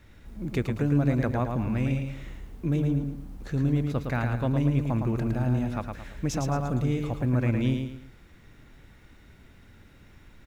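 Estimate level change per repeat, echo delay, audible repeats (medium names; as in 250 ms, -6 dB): -9.0 dB, 111 ms, 3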